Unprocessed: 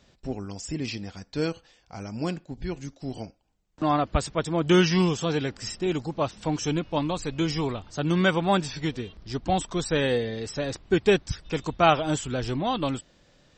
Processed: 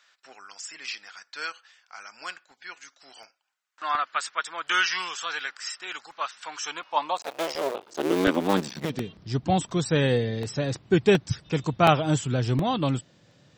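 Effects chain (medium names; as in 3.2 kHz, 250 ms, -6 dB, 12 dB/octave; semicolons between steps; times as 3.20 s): 7.17–8.90 s: cycle switcher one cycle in 2, muted; high-pass sweep 1.4 kHz -> 120 Hz, 6.49–9.25 s; crackling interface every 0.72 s, samples 64, repeat, from 0.35 s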